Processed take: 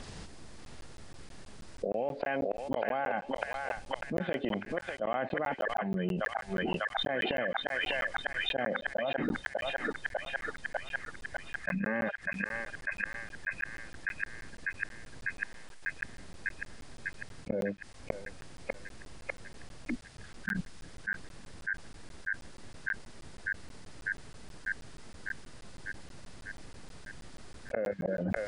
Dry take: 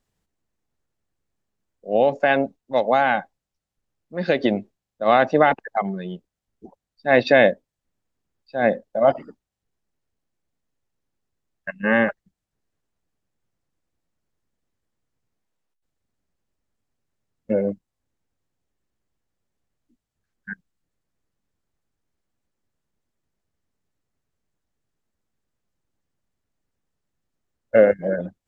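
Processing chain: knee-point frequency compression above 2.2 kHz 1.5:1; inverted gate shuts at -16 dBFS, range -40 dB; band-passed feedback delay 598 ms, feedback 69%, band-pass 2.1 kHz, level -7 dB; crackling interface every 0.16 s, samples 512, zero, from 0.65 s; level flattener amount 100%; trim -8.5 dB

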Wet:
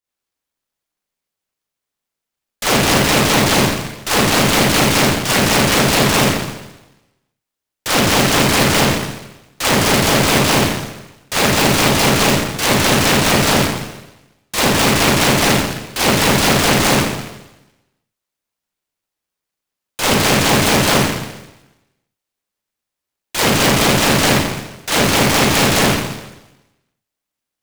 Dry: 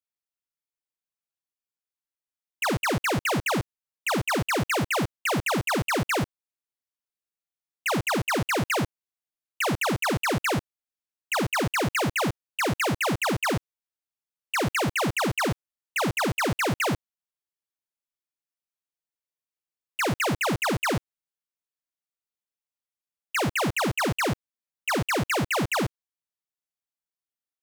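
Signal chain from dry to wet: Schroeder reverb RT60 1 s, combs from 29 ms, DRR -8.5 dB; delay time shaken by noise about 1.5 kHz, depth 0.19 ms; trim +3.5 dB

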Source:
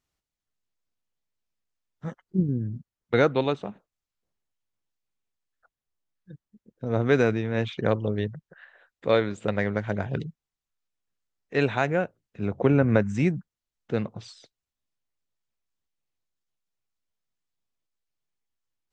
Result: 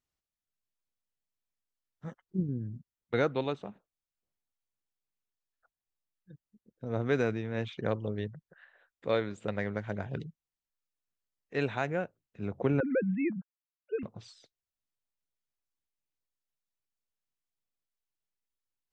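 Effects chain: 12.80–14.03 s: formants replaced by sine waves; trim -7.5 dB

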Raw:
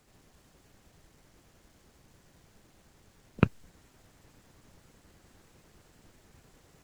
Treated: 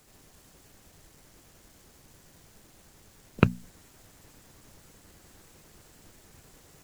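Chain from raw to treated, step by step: treble shelf 6.2 kHz +9 dB; hum notches 60/120/180/240 Hz; trim +3.5 dB

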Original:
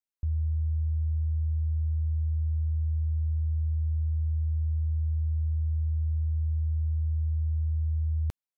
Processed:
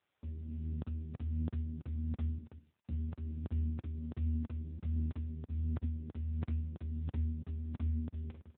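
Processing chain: 2.38–2.89 s: inverse Chebyshev high-pass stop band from 200 Hz, stop band 80 dB; peak limiter -31.5 dBFS, peak gain reduction 7.5 dB; saturation -35 dBFS, distortion -18 dB; phaser 1.4 Hz, delay 2.6 ms, feedback 57%; delay 200 ms -13 dB; reverberation, pre-delay 43 ms, DRR 6 dB; careless resampling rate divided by 8×, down none, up hold; crackling interface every 0.33 s, samples 2048, zero, from 0.82 s; trim +4 dB; AMR-NB 6.7 kbps 8 kHz

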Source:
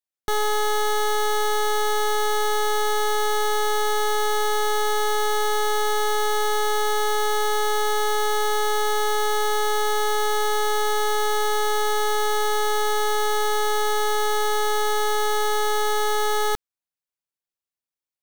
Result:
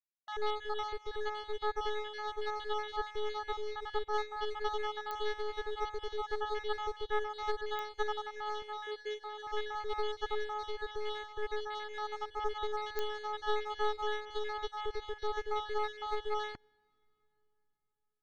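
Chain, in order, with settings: random holes in the spectrogram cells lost 27%; reverb removal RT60 0.84 s; low-pass 4.3 kHz 24 dB/octave; reverb removal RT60 1.9 s; 8.62–9.47 s: high-pass 340 Hz 12 dB/octave; peak limiter -26 dBFS, peak gain reduction 8 dB; reverberation RT60 4.2 s, pre-delay 47 ms, DRR 15 dB; clicks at 5.11/7.79/12.99 s, -19 dBFS; upward expansion 2.5:1, over -43 dBFS

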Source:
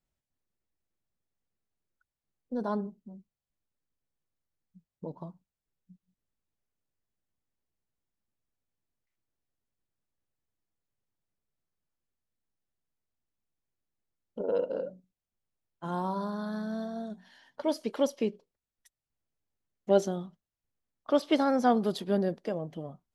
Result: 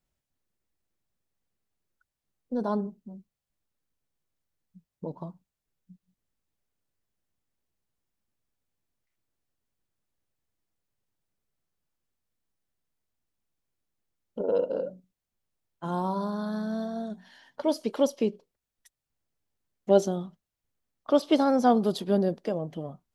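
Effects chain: dynamic bell 1.9 kHz, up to -7 dB, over -50 dBFS, Q 1.6; trim +3.5 dB

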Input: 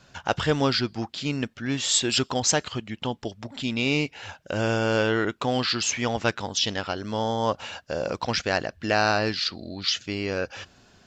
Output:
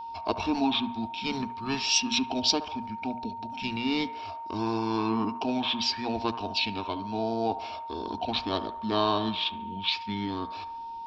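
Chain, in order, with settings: static phaser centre 540 Hz, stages 6; formant shift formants -5 st; hum notches 60/120/180/240 Hz; feedback echo behind a band-pass 71 ms, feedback 53%, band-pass 970 Hz, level -11 dB; whistle 920 Hz -36 dBFS

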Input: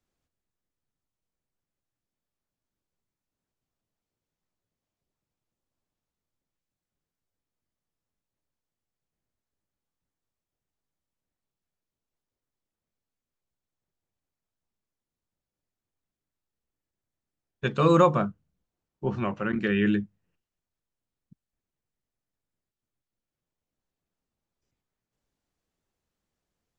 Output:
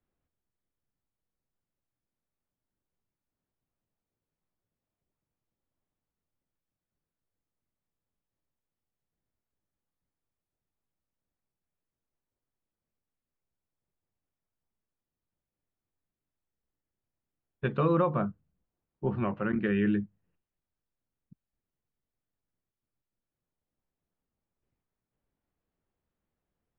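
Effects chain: compression 3:1, threshold -22 dBFS, peak gain reduction 7 dB; distance through air 440 m

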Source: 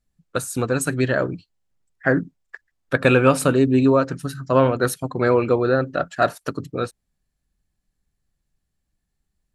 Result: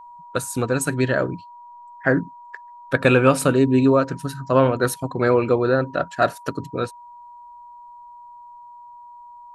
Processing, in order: whistle 960 Hz -40 dBFS

